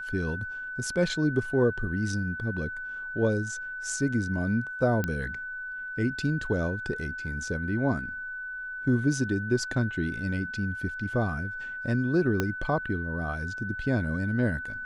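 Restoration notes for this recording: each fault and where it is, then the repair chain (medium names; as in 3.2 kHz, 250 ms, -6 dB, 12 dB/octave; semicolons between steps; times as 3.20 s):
whine 1.5 kHz -34 dBFS
5.04 s: pop -15 dBFS
12.40 s: pop -12 dBFS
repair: de-click; band-stop 1.5 kHz, Q 30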